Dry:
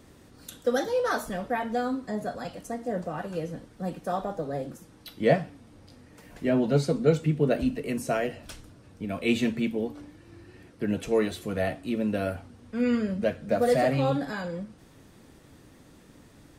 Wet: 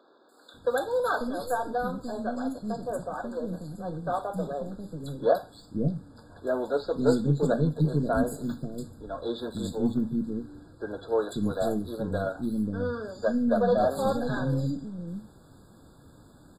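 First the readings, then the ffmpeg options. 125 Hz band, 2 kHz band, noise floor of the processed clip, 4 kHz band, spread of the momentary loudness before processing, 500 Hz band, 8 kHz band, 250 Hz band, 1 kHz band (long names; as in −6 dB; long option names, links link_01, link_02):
+1.0 dB, −3.0 dB, −55 dBFS, −4.0 dB, 15 LU, −0.5 dB, −3.0 dB, −0.5 dB, +1.0 dB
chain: -filter_complex "[0:a]aeval=exprs='if(lt(val(0),0),0.708*val(0),val(0))':channel_layout=same,acrossover=split=350|4100[link_01][link_02][link_03];[link_03]adelay=290[link_04];[link_01]adelay=540[link_05];[link_05][link_02][link_04]amix=inputs=3:normalize=0,afftfilt=real='re*eq(mod(floor(b*sr/1024/1700),2),0)':imag='im*eq(mod(floor(b*sr/1024/1700),2),0)':win_size=1024:overlap=0.75,volume=2.5dB"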